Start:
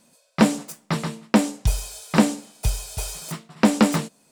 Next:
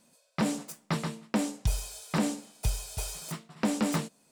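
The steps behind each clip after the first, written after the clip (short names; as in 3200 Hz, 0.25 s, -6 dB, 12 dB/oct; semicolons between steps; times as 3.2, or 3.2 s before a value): limiter -11.5 dBFS, peak gain reduction 9 dB; gain -5.5 dB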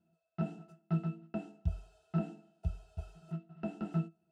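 octave resonator E, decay 0.13 s; gain +2.5 dB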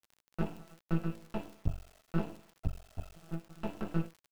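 half-wave rectifier; bit-crush 11-bit; crackle 32/s -48 dBFS; gain +5 dB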